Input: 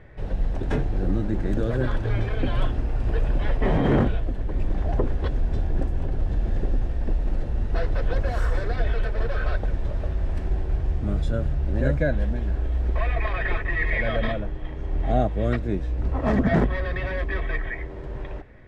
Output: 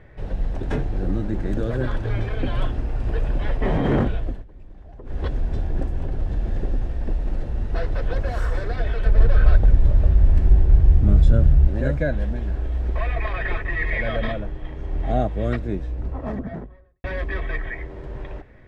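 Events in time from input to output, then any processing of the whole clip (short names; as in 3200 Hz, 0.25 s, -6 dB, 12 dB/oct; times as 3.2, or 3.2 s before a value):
4.3–5.19 dip -18.5 dB, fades 0.15 s
9.06–11.68 low shelf 210 Hz +11.5 dB
15.51–17.04 studio fade out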